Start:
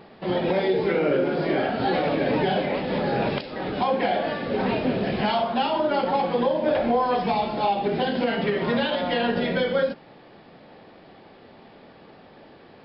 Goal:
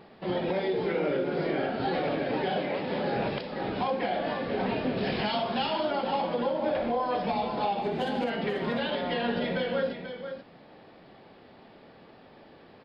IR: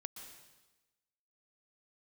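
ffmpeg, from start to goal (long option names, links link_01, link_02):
-filter_complex "[0:a]asettb=1/sr,asplit=3[link_01][link_02][link_03];[link_01]atrim=end=2.244[link_04];[link_02]atrim=start=2.24:end=3.17,asetpts=PTS-STARTPTS,afade=type=in:duration=0.004:curve=qsin,afade=type=out:start_time=0.926:duration=0.004:curve=qsin,highpass=frequency=140:poles=1[link_05];[link_03]atrim=start=3.166[link_06];[link_04][link_05]acrossfade=duration=0.004:curve1=hsin:curve2=qsin[link_07];[link_07][link_06]acrossfade=duration=0.004:curve1=qsin:curve2=hsin,asettb=1/sr,asplit=3[link_08][link_09][link_10];[link_08]atrim=end=4.974[link_11];[link_09]atrim=start=4.97:end=5.91,asetpts=PTS-STARTPTS,afade=type=in:duration=0.004:curve=qsin,afade=type=out:start_time=0.936:duration=0.004:curve=qsin,highshelf=frequency=2600:gain=10[link_12];[link_10]atrim=start=5.906[link_13];[link_11][link_12]acrossfade=duration=0.004:curve1=hsin:curve2=qsin[link_14];[link_14][link_13]acrossfade=duration=0.004:curve1=qsin:curve2=hsin,alimiter=limit=-15.5dB:level=0:latency=1:release=249,asettb=1/sr,asplit=3[link_15][link_16][link_17];[link_15]atrim=end=7.824[link_18];[link_16]atrim=start=7.82:end=8.3,asetpts=PTS-STARTPTS,afade=type=in:duration=0.004:curve=qsin,afade=type=out:start_time=0.476:duration=0.004:curve=qsin,adynamicsmooth=sensitivity=7.5:basefreq=4700[link_19];[link_17]atrim=start=8.296[link_20];[link_18][link_19]acrossfade=duration=0.004:curve1=hsin:curve2=qsin[link_21];[link_21][link_20]acrossfade=duration=0.004:curve1=qsin:curve2=hsin,aecho=1:1:488:0.355,volume=-4.5dB"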